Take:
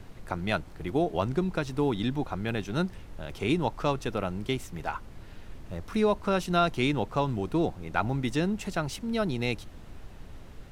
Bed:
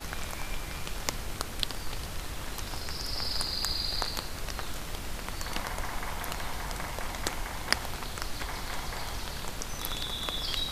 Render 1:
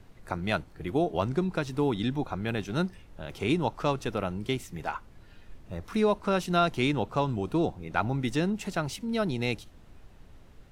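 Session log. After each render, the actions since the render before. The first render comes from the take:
noise reduction from a noise print 7 dB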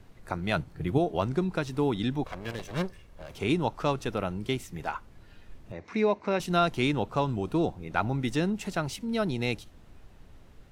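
0:00.56–0:00.98: parametric band 130 Hz +9.5 dB 1.2 octaves
0:02.24–0:03.36: lower of the sound and its delayed copy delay 1.8 ms
0:05.72–0:06.40: loudspeaker in its box 140–5,900 Hz, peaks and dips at 170 Hz −5 dB, 1,300 Hz −7 dB, 2,200 Hz +8 dB, 3,200 Hz −9 dB, 4,900 Hz −4 dB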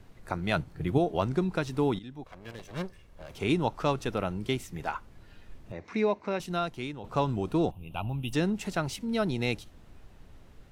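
0:01.99–0:03.55: fade in, from −17.5 dB
0:05.81–0:07.04: fade out, to −14.5 dB
0:07.71–0:08.33: drawn EQ curve 110 Hz 0 dB, 250 Hz −8 dB, 430 Hz −12 dB, 620 Hz −7 dB, 1,100 Hz −7 dB, 1,900 Hz −27 dB, 2,800 Hz +8 dB, 4,500 Hz −18 dB, 7,400 Hz −16 dB, 11,000 Hz +8 dB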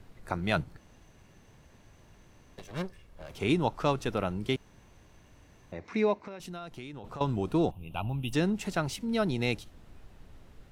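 0:00.77–0:02.58: fill with room tone
0:04.56–0:05.72: fill with room tone
0:06.24–0:07.21: downward compressor, threshold −38 dBFS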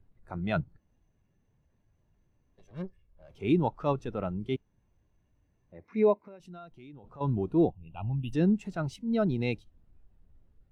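transient designer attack −5 dB, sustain −1 dB
every bin expanded away from the loudest bin 1.5 to 1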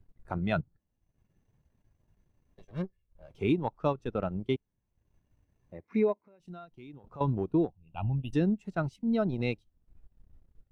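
transient designer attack +6 dB, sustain −11 dB
downward compressor 3 to 1, threshold −24 dBFS, peak gain reduction 7 dB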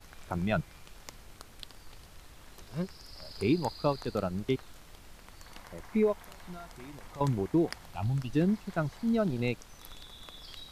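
mix in bed −15 dB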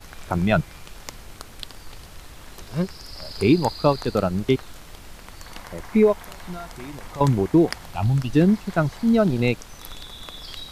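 level +10 dB

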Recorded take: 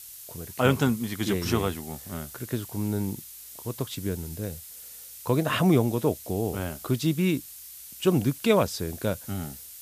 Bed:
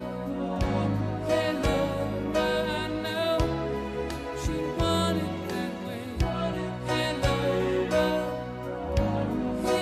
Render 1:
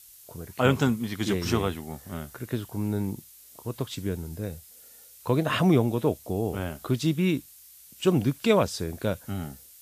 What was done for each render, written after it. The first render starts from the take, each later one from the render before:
noise reduction from a noise print 7 dB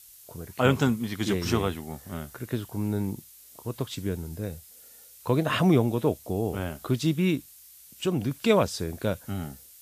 0:07.35–0:08.31: downward compressor 1.5 to 1, threshold −29 dBFS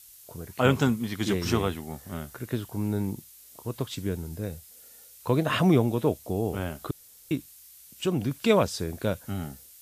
0:06.91–0:07.31: fill with room tone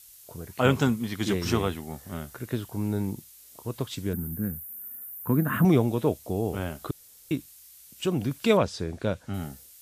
0:04.13–0:05.65: drawn EQ curve 130 Hz 0 dB, 210 Hz +9 dB, 570 Hz −12 dB, 1,600 Hz +2 dB, 2,300 Hz −10 dB, 4,700 Hz −26 dB, 14,000 Hz +15 dB
0:08.57–0:09.34: high-frequency loss of the air 70 metres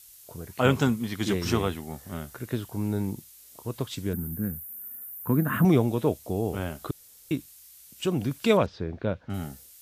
0:08.66–0:09.30: high-frequency loss of the air 260 metres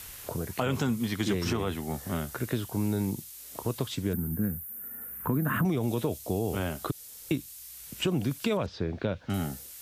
brickwall limiter −18 dBFS, peak gain reduction 11 dB
multiband upward and downward compressor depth 70%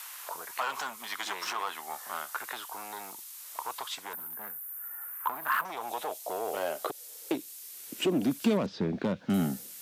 hard clipping −25 dBFS, distortion −13 dB
high-pass filter sweep 1,000 Hz → 200 Hz, 0:05.60–0:08.76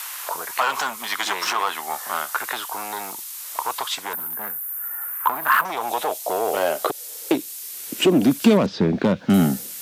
level +11 dB

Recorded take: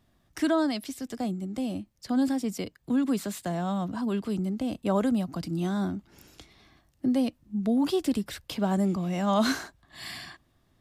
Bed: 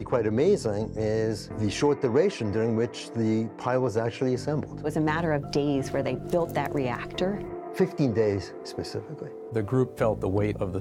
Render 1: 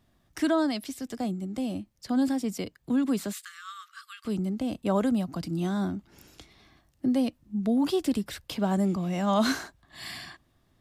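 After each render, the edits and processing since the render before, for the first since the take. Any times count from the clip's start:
0:03.33–0:04.25: linear-phase brick-wall high-pass 1,100 Hz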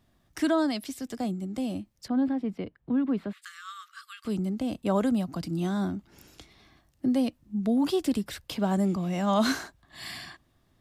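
0:02.08–0:03.42: high-frequency loss of the air 480 metres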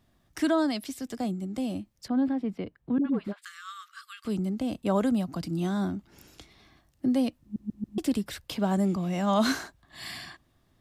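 0:02.98–0:03.39: all-pass dispersion highs, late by 73 ms, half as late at 630 Hz
0:07.42: stutter in place 0.14 s, 4 plays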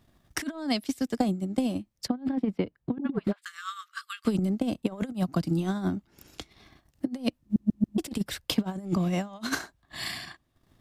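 compressor whose output falls as the input rises −29 dBFS, ratio −0.5
transient designer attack +7 dB, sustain −9 dB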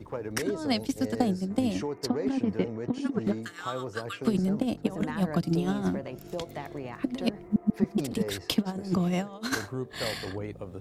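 mix in bed −10.5 dB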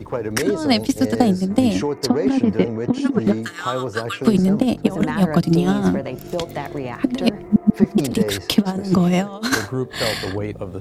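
level +10.5 dB
brickwall limiter −2 dBFS, peak gain reduction 2.5 dB

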